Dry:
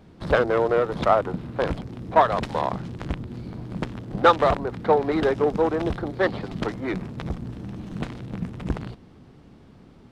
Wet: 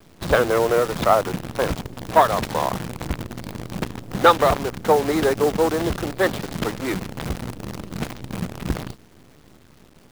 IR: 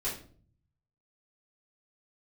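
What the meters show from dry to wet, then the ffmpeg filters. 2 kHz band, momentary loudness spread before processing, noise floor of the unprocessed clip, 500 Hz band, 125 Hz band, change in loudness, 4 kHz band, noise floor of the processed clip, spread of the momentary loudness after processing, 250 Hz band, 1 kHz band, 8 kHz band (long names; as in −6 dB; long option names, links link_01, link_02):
+3.0 dB, 13 LU, −50 dBFS, +2.0 dB, +1.5 dB, +2.5 dB, +6.0 dB, −51 dBFS, 13 LU, +2.0 dB, +2.5 dB, can't be measured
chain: -af "highshelf=frequency=4400:gain=6,acrusher=bits=6:dc=4:mix=0:aa=0.000001,volume=2dB"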